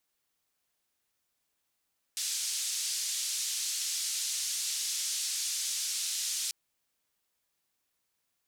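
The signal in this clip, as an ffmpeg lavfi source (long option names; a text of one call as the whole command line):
ffmpeg -f lavfi -i "anoisesrc=color=white:duration=4.34:sample_rate=44100:seed=1,highpass=frequency=4800,lowpass=frequency=7000,volume=-19.5dB" out.wav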